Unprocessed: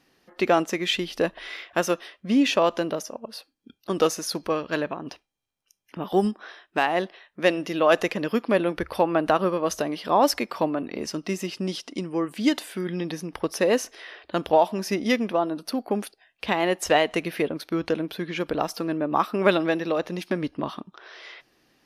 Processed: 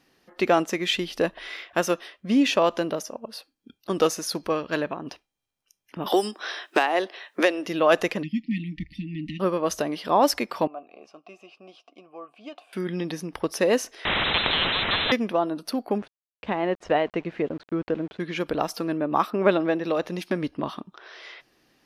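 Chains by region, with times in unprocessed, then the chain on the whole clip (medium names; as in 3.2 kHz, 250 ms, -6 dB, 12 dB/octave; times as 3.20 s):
6.06–7.66 s: high-pass 280 Hz 24 dB/octave + peaking EQ 6.2 kHz +3 dB 1.6 oct + three bands compressed up and down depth 100%
8.23–9.40 s: brick-wall FIR band-stop 310–1800 Hz + tape spacing loss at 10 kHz 23 dB + comb 5.6 ms, depth 52%
10.67–12.73 s: vowel filter a + doubling 14 ms -14 dB
14.05–15.12 s: jump at every zero crossing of -25.5 dBFS + frequency inversion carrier 3.8 kHz + spectrum-flattening compressor 4:1
15.98–18.20 s: small samples zeroed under -39 dBFS + tape spacing loss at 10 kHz 33 dB
19.30–19.84 s: high-pass 510 Hz 6 dB/octave + tilt EQ -3.5 dB/octave
whole clip: none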